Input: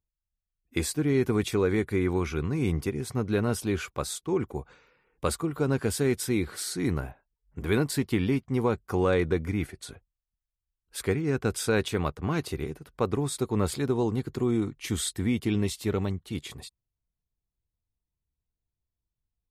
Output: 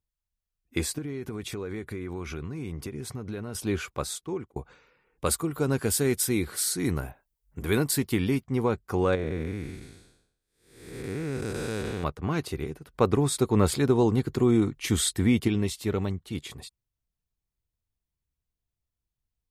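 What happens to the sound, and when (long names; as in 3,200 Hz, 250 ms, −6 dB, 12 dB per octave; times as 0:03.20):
0:00.98–0:03.55: downward compressor 8 to 1, threshold −31 dBFS
0:04.15–0:04.56: fade out
0:05.26–0:08.44: high-shelf EQ 7,200 Hz +12 dB
0:09.15–0:12.04: spectrum smeared in time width 421 ms
0:12.94–0:15.48: clip gain +4.5 dB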